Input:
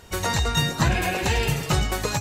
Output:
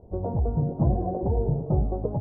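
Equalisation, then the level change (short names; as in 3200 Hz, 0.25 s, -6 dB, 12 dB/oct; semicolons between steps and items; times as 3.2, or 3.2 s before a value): steep low-pass 720 Hz 36 dB/oct; 0.0 dB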